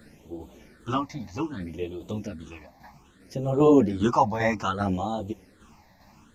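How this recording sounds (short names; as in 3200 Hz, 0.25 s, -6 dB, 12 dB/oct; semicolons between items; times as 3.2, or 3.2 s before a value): phasing stages 8, 0.63 Hz, lowest notch 390–1700 Hz; tremolo saw down 2.5 Hz, depth 55%; a shimmering, thickened sound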